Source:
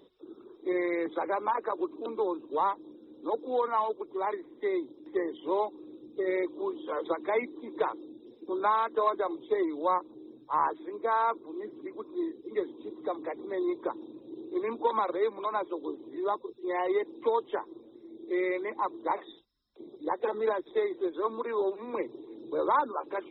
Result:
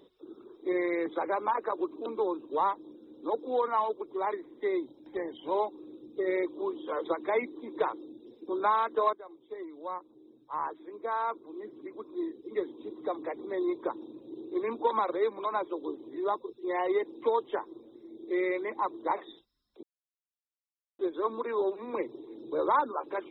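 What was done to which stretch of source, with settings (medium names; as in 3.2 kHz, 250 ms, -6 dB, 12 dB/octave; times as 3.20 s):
4.86–5.55 s: comb 1.3 ms, depth 50%
9.13–12.95 s: fade in, from -18 dB
19.83–20.99 s: mute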